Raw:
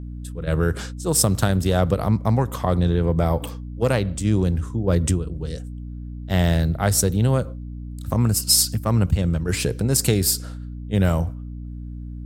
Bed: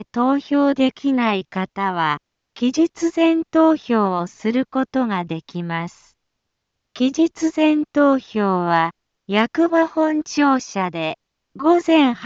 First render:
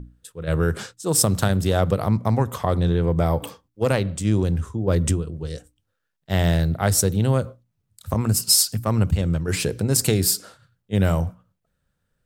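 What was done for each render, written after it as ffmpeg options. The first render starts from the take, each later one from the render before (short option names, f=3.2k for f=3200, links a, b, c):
-af "bandreject=f=60:t=h:w=6,bandreject=f=120:t=h:w=6,bandreject=f=180:t=h:w=6,bandreject=f=240:t=h:w=6,bandreject=f=300:t=h:w=6"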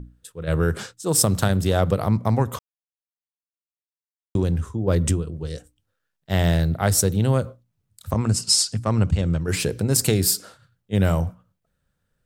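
-filter_complex "[0:a]asettb=1/sr,asplit=3[a][b][c];[a]atrim=end=8.114[d];[b]atrim=start=8.11:end=9.41,asetpts=PTS-STARTPTS,afade=t=in:d=0.004:c=qsin,afade=t=out:st=1.296:d=0.004:c=qsin,lowpass=f=8.5k:w=0.5412,lowpass=f=8.5k:w=1.3066[e];[c]atrim=start=9.406[f];[d][e]acrossfade=d=0.004:c1=hsin:c2=qsin[g];[g][f]acrossfade=d=0.004:c1=qsin:c2=hsin,asplit=3[h][i][j];[h]atrim=end=2.59,asetpts=PTS-STARTPTS,afade=t=out:st=2.586:d=0.004:c=hsin[k];[i]atrim=start=2.59:end=4.35,asetpts=PTS-STARTPTS,volume=0[l];[j]atrim=start=4.35,asetpts=PTS-STARTPTS,afade=t=in:d=0.004:c=hsin[m];[k][l][m]concat=n=3:v=0:a=1"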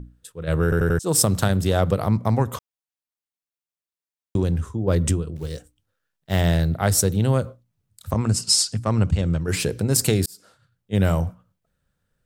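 -filter_complex "[0:a]asettb=1/sr,asplit=3[a][b][c];[a]atrim=end=5.364[d];[b]atrim=start=5.36:end=6.41,asetpts=PTS-STARTPTS,afade=t=in:d=0.004:c=qsin,afade=t=out:st=1.046:d=0.004:c=qsin,acrusher=bits=6:mode=log:mix=0:aa=0.000001[e];[c]atrim=start=6.406[f];[d][e]acrossfade=d=0.004:c1=hsin:c2=qsin[g];[g][f]acrossfade=d=0.004:c1=qsin:c2=hsin,asplit=6[h][i][j][k][l][m];[h]atrim=end=0.722[n];[i]atrim=start=0.628:end=0.722[o];[j]atrim=start=0.628:end=0.722[p];[k]atrim=start=0.628:end=0.722[q];[l]atrim=start=0.988:end=10.26,asetpts=PTS-STARTPTS,afade=t=out:st=9.268:d=0.004:c=hsin[r];[m]atrim=start=10.26,asetpts=PTS-STARTPTS,afade=t=in:d=0.69[s];[n][o]acrossfade=d=0.004:c1=hsin:c2=hsin[t];[t][p]acrossfade=d=0.004:c1=hsin:c2=hsin[u];[u][q]acrossfade=d=0.004:c1=hsin:c2=hsin[v];[r][s]concat=n=2:v=0:a=1[w];[v][w]acrossfade=d=0.004:c1=hsin:c2=hsin"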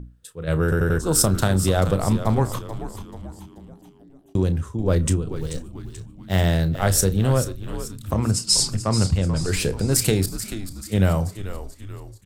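-filter_complex "[0:a]asplit=2[a][b];[b]adelay=32,volume=-13dB[c];[a][c]amix=inputs=2:normalize=0,asplit=6[d][e][f][g][h][i];[e]adelay=435,afreqshift=-100,volume=-11dB[j];[f]adelay=870,afreqshift=-200,volume=-17.2dB[k];[g]adelay=1305,afreqshift=-300,volume=-23.4dB[l];[h]adelay=1740,afreqshift=-400,volume=-29.6dB[m];[i]adelay=2175,afreqshift=-500,volume=-35.8dB[n];[d][j][k][l][m][n]amix=inputs=6:normalize=0"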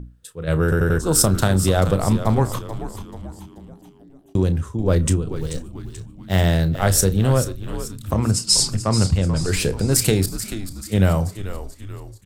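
-af "volume=2dB"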